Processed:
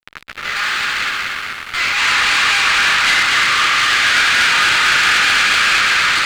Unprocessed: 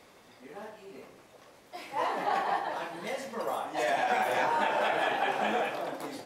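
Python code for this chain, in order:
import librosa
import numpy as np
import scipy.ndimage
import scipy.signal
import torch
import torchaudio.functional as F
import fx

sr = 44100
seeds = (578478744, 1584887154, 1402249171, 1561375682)

p1 = fx.room_shoebox(x, sr, seeds[0], volume_m3=770.0, walls='furnished', distance_m=8.6)
p2 = fx.rider(p1, sr, range_db=10, speed_s=0.5)
p3 = p1 + (p2 * 10.0 ** (1.0 / 20.0))
p4 = fx.env_lowpass(p3, sr, base_hz=1700.0, full_db=-7.5)
p5 = fx.fuzz(p4, sr, gain_db=33.0, gate_db=-33.0)
p6 = scipy.signal.sosfilt(scipy.signal.ellip(3, 1.0, 40, [1300.0, 4700.0], 'bandpass', fs=sr, output='sos'), p5)
p7 = p6 + fx.echo_feedback(p6, sr, ms=240, feedback_pct=47, wet_db=-3, dry=0)
p8 = fx.leveller(p7, sr, passes=2)
y = fx.running_max(p8, sr, window=3)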